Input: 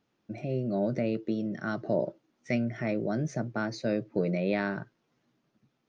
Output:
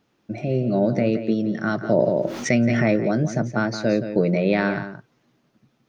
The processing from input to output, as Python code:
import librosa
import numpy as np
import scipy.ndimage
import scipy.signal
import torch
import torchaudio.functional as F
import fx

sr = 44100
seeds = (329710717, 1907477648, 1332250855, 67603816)

y = x + 10.0 ** (-10.5 / 20.0) * np.pad(x, (int(172 * sr / 1000.0), 0))[:len(x)]
y = fx.env_flatten(y, sr, amount_pct=70, at=(1.98, 2.96))
y = y * 10.0 ** (8.5 / 20.0)